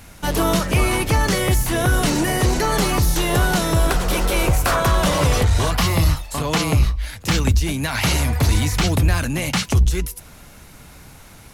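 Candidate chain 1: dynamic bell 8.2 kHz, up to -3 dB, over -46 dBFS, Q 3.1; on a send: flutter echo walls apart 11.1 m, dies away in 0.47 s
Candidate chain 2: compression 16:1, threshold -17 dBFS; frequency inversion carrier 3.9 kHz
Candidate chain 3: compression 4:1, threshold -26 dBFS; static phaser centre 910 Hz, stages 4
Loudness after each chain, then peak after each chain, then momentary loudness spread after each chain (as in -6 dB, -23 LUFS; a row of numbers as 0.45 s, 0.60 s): -18.5 LUFS, -17.5 LUFS, -30.5 LUFS; -5.0 dBFS, -7.5 dBFS, -16.5 dBFS; 4 LU, 3 LU, 7 LU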